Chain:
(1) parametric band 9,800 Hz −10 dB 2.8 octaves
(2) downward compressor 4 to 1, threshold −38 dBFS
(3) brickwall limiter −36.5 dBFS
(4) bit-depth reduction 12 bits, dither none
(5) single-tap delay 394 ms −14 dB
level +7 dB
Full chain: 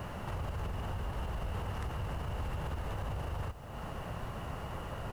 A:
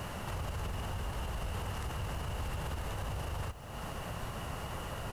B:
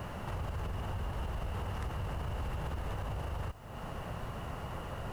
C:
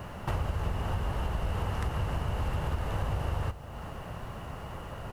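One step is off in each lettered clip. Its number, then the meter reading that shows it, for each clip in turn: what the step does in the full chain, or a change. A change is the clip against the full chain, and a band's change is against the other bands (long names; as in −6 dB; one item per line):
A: 1, 8 kHz band +8.0 dB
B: 5, change in crest factor −1.5 dB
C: 3, average gain reduction 3.5 dB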